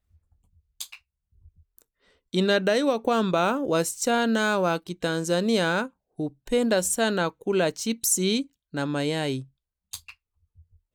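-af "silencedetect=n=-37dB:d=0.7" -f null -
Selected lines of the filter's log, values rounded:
silence_start: 0.00
silence_end: 0.80 | silence_duration: 0.80
silence_start: 0.95
silence_end: 1.78 | silence_duration: 0.83
silence_start: 10.10
silence_end: 10.94 | silence_duration: 0.84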